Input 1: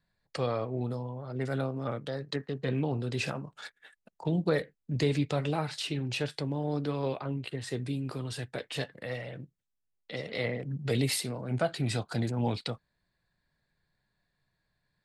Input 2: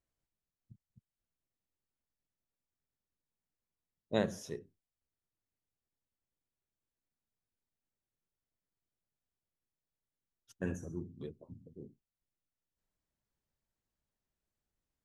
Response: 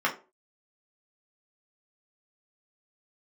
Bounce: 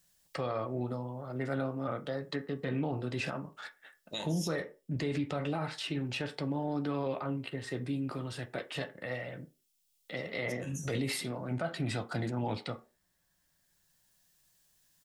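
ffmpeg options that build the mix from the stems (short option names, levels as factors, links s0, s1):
-filter_complex "[0:a]highshelf=f=4400:g=-6,volume=0.75,asplit=3[s0][s1][s2];[s1]volume=0.188[s3];[1:a]acompressor=threshold=0.0158:ratio=6,aexciter=amount=10.6:drive=4.6:freq=2500,volume=1.12,asplit=2[s4][s5];[s5]volume=0.119[s6];[s2]apad=whole_len=667971[s7];[s4][s7]sidechaincompress=threshold=0.00398:ratio=3:attack=16:release=1220[s8];[2:a]atrim=start_sample=2205[s9];[s3][s6]amix=inputs=2:normalize=0[s10];[s10][s9]afir=irnorm=-1:irlink=0[s11];[s0][s8][s11]amix=inputs=3:normalize=0,alimiter=level_in=1.06:limit=0.0631:level=0:latency=1:release=35,volume=0.944"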